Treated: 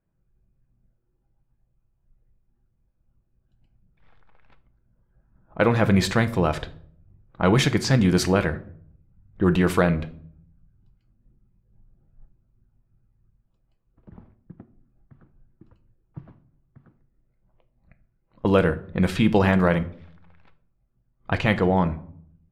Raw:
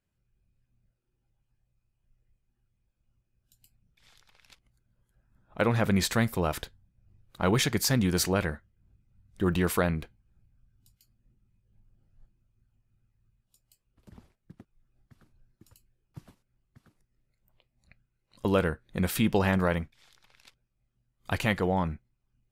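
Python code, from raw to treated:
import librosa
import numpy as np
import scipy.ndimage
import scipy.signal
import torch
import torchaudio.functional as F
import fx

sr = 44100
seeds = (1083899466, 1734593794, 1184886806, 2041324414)

y = fx.lowpass(x, sr, hz=3600.0, slope=6)
y = fx.env_lowpass(y, sr, base_hz=1300.0, full_db=-22.0)
y = fx.room_shoebox(y, sr, seeds[0], volume_m3=810.0, walls='furnished', distance_m=0.67)
y = y * librosa.db_to_amplitude(6.0)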